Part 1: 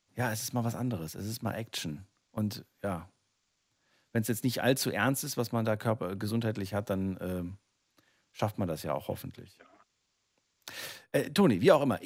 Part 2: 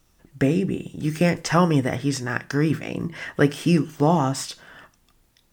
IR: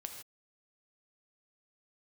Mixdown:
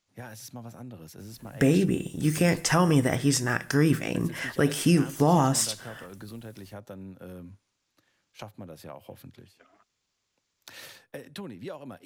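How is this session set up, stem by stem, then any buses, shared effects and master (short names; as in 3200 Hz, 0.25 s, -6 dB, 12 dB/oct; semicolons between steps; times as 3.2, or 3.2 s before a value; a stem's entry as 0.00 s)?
-1.5 dB, 0.00 s, no send, compressor 3:1, threshold -40 dBFS, peak gain reduction 17.5 dB
-1.0 dB, 1.20 s, send -15 dB, bell 11000 Hz +12 dB 1 oct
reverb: on, pre-delay 3 ms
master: limiter -12 dBFS, peak gain reduction 6.5 dB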